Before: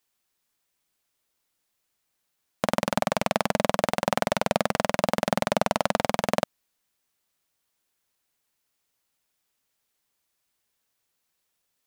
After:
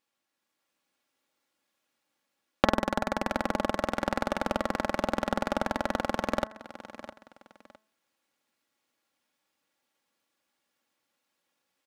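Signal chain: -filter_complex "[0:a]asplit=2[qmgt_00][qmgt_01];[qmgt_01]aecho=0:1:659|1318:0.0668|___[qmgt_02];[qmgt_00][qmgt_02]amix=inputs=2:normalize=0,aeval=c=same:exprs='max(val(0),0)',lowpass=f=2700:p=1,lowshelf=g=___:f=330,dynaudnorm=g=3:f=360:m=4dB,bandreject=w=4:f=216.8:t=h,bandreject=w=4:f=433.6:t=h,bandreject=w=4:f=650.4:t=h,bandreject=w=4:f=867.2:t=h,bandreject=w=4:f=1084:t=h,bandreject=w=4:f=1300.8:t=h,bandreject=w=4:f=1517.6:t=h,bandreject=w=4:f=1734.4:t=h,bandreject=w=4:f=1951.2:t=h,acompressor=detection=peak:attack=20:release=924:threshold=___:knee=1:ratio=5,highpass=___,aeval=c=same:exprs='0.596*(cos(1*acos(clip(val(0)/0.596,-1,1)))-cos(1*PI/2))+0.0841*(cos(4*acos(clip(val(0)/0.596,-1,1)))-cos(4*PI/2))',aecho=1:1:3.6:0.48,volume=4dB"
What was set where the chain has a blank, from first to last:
0.016, 2, -25dB, 160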